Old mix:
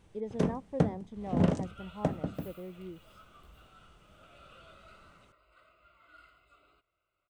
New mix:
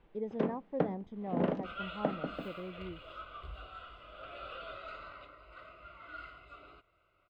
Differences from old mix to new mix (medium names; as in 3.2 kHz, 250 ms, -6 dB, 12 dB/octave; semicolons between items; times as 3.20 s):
first sound: add three-band isolator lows -23 dB, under 210 Hz, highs -22 dB, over 4 kHz; second sound +12.0 dB; master: add distance through air 170 m